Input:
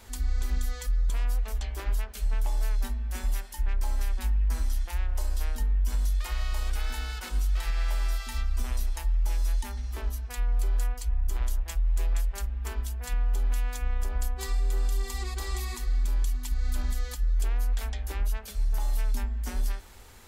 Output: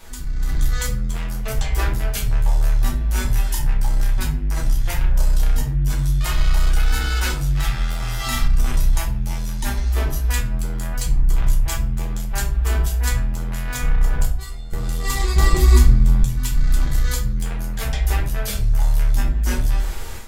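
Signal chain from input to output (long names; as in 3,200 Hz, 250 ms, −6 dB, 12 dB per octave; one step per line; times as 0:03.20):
soft clipping −28 dBFS, distortion −12 dB
0:14.25–0:14.73: tuned comb filter 710 Hz, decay 0.21 s, harmonics all, mix 90%
downward compressor, threshold −33 dBFS, peak gain reduction 4 dB
0:15.36–0:16.22: low-shelf EQ 500 Hz +9.5 dB
convolution reverb RT60 0.40 s, pre-delay 5 ms, DRR −1.5 dB
automatic gain control gain up to 10 dB
0:07.98–0:08.48: double-tracking delay 41 ms −3 dB
level +3.5 dB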